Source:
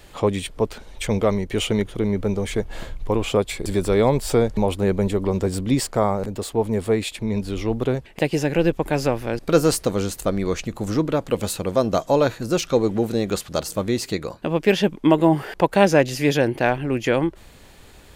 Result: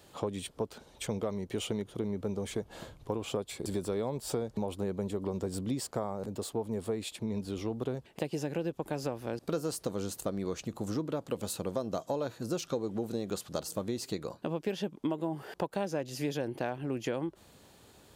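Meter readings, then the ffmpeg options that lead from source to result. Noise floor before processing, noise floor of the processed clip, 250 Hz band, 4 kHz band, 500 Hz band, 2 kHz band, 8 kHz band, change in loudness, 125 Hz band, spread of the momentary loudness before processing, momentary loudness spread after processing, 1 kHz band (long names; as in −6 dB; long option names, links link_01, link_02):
−46 dBFS, −59 dBFS, −13.5 dB, −13.0 dB, −14.0 dB, −18.0 dB, −11.0 dB, −14.0 dB, −14.0 dB, 8 LU, 3 LU, −15.5 dB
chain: -af "highpass=99,equalizer=frequency=2100:width_type=o:width=0.88:gain=-7,acompressor=threshold=-22dB:ratio=6,volume=-7.5dB"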